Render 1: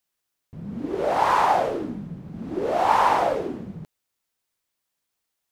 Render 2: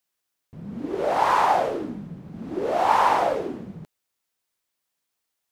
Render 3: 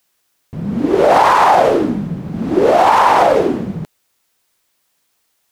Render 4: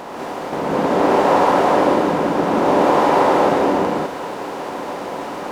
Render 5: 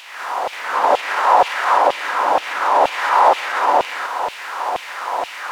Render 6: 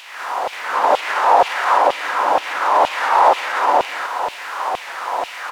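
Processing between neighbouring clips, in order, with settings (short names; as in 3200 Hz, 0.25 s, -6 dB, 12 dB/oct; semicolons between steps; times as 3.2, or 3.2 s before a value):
low shelf 140 Hz -5 dB
maximiser +16 dB; gain -1 dB
per-bin compression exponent 0.2; non-linear reverb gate 0.23 s rising, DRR -4.5 dB; gain -17 dB
limiter -8.5 dBFS, peak gain reduction 7 dB; LFO high-pass saw down 2.1 Hz 640–2900 Hz; gain +2.5 dB
feedback echo 0.193 s, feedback 59%, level -24 dB; record warp 33 1/3 rpm, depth 100 cents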